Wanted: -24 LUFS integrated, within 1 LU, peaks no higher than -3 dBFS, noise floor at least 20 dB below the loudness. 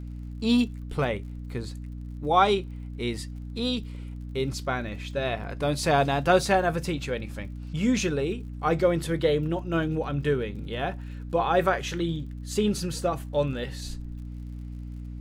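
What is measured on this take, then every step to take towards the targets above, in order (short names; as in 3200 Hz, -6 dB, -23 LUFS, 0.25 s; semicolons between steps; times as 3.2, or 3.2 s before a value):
ticks 51/s; hum 60 Hz; harmonics up to 300 Hz; hum level -34 dBFS; loudness -27.0 LUFS; peak -6.5 dBFS; loudness target -24.0 LUFS
-> de-click; de-hum 60 Hz, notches 5; gain +3 dB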